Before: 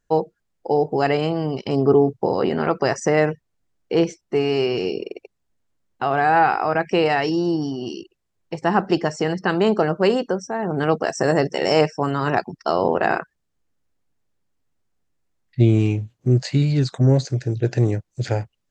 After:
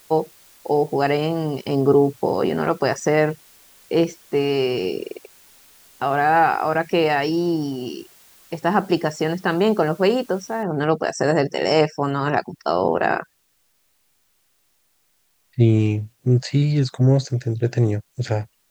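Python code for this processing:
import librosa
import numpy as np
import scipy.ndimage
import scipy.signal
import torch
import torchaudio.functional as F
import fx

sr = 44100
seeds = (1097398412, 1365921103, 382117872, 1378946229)

y = fx.noise_floor_step(x, sr, seeds[0], at_s=10.63, before_db=-51, after_db=-66, tilt_db=0.0)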